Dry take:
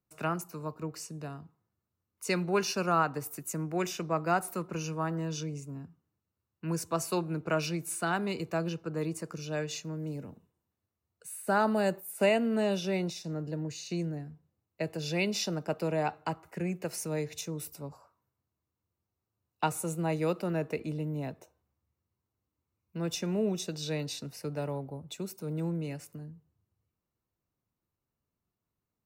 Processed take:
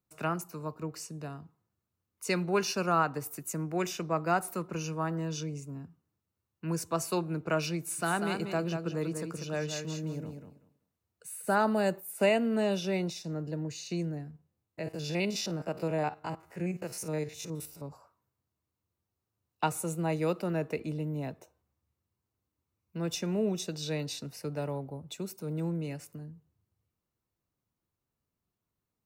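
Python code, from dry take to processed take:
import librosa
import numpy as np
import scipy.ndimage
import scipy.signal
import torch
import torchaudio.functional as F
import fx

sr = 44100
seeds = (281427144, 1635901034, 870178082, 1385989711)

y = fx.echo_feedback(x, sr, ms=191, feedback_pct=17, wet_db=-6.5, at=(7.98, 11.54), fade=0.02)
y = fx.spec_steps(y, sr, hold_ms=50, at=(14.3, 17.86), fade=0.02)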